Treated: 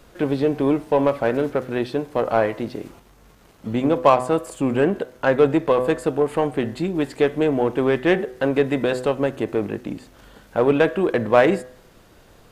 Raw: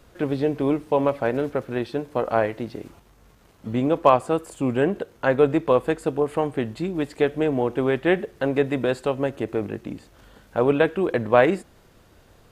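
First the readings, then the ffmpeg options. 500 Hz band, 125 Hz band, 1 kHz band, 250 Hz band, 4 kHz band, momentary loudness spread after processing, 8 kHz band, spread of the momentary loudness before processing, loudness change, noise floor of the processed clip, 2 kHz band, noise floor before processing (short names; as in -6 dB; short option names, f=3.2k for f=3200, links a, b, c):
+2.5 dB, +1.0 dB, +1.5 dB, +2.5 dB, +3.0 dB, 9 LU, n/a, 10 LU, +2.0 dB, -52 dBFS, +2.0 dB, -55 dBFS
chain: -filter_complex "[0:a]equalizer=f=78:w=1.6:g=-6,bandreject=f=126.4:t=h:w=4,bandreject=f=252.8:t=h:w=4,bandreject=f=379.2:t=h:w=4,bandreject=f=505.6:t=h:w=4,bandreject=f=632:t=h:w=4,bandreject=f=758.4:t=h:w=4,bandreject=f=884.8:t=h:w=4,bandreject=f=1.0112k:t=h:w=4,bandreject=f=1.1376k:t=h:w=4,bandreject=f=1.264k:t=h:w=4,bandreject=f=1.3904k:t=h:w=4,bandreject=f=1.5168k:t=h:w=4,bandreject=f=1.6432k:t=h:w=4,bandreject=f=1.7696k:t=h:w=4,bandreject=f=1.896k:t=h:w=4,bandreject=f=2.0224k:t=h:w=4,asplit=2[a][b];[b]asoftclip=type=tanh:threshold=-20dB,volume=-4dB[c];[a][c]amix=inputs=2:normalize=0"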